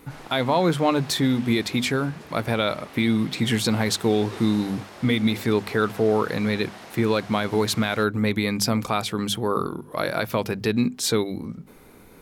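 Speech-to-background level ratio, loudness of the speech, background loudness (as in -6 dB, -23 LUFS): 19.0 dB, -23.5 LUFS, -42.5 LUFS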